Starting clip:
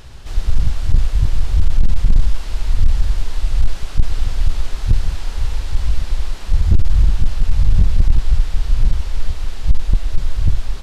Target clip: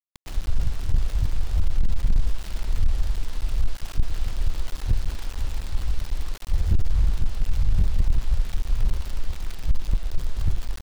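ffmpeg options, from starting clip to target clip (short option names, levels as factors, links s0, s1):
-af "aeval=exprs='val(0)*gte(abs(val(0)),0.0501)':c=same,volume=0.398"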